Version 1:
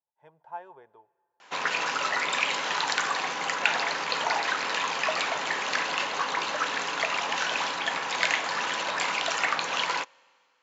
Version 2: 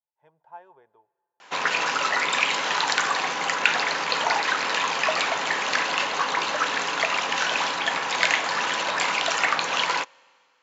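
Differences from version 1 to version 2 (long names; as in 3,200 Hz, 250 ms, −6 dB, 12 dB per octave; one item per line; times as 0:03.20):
speech −4.5 dB
background +4.0 dB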